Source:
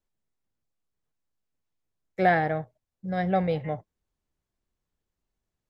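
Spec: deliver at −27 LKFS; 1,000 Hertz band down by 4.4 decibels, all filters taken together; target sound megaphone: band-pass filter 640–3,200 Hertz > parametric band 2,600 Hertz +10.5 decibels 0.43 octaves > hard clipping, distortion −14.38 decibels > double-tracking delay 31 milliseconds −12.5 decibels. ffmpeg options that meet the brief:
ffmpeg -i in.wav -filter_complex "[0:a]highpass=640,lowpass=3200,equalizer=frequency=1000:width_type=o:gain=-4.5,equalizer=frequency=2600:width_type=o:width=0.43:gain=10.5,asoftclip=type=hard:threshold=-20.5dB,asplit=2[link_01][link_02];[link_02]adelay=31,volume=-12.5dB[link_03];[link_01][link_03]amix=inputs=2:normalize=0,volume=5dB" out.wav

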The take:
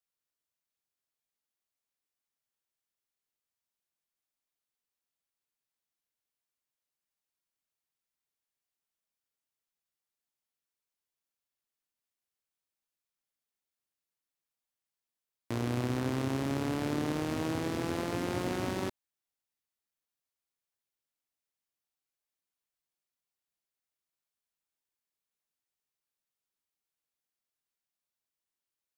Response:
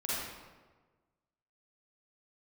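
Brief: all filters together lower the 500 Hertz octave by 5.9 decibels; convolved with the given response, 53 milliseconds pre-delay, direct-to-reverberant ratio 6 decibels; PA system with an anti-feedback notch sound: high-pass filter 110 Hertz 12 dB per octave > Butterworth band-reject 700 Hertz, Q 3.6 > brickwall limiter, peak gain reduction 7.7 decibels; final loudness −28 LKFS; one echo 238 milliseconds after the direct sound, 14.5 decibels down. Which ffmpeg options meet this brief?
-filter_complex "[0:a]equalizer=frequency=500:width_type=o:gain=-7.5,aecho=1:1:238:0.188,asplit=2[link_01][link_02];[1:a]atrim=start_sample=2205,adelay=53[link_03];[link_02][link_03]afir=irnorm=-1:irlink=0,volume=-11.5dB[link_04];[link_01][link_04]amix=inputs=2:normalize=0,highpass=110,asuperstop=centerf=700:order=8:qfactor=3.6,volume=11dB,alimiter=limit=-16.5dB:level=0:latency=1"

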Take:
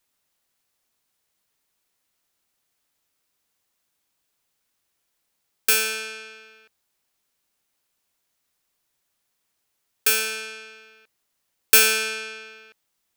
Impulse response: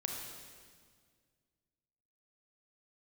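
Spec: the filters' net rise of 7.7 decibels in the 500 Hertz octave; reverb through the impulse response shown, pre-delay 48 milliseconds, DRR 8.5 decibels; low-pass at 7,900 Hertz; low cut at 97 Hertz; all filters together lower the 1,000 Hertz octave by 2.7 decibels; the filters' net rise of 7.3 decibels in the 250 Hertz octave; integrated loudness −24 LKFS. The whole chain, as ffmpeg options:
-filter_complex "[0:a]highpass=97,lowpass=7900,equalizer=frequency=250:width_type=o:gain=7.5,equalizer=frequency=500:width_type=o:gain=7.5,equalizer=frequency=1000:width_type=o:gain=-6,asplit=2[link_01][link_02];[1:a]atrim=start_sample=2205,adelay=48[link_03];[link_02][link_03]afir=irnorm=-1:irlink=0,volume=-10dB[link_04];[link_01][link_04]amix=inputs=2:normalize=0,volume=-2dB"

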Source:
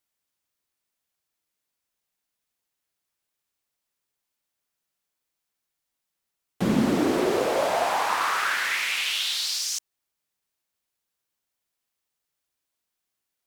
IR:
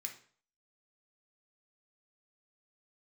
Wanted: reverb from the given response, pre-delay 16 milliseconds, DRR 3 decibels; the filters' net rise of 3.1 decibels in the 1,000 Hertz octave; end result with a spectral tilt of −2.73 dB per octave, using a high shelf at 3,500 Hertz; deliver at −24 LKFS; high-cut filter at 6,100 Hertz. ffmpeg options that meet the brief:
-filter_complex "[0:a]lowpass=6100,equalizer=frequency=1000:width_type=o:gain=3.5,highshelf=frequency=3500:gain=4.5,asplit=2[link_01][link_02];[1:a]atrim=start_sample=2205,adelay=16[link_03];[link_02][link_03]afir=irnorm=-1:irlink=0,volume=0dB[link_04];[link_01][link_04]amix=inputs=2:normalize=0,volume=-3dB"

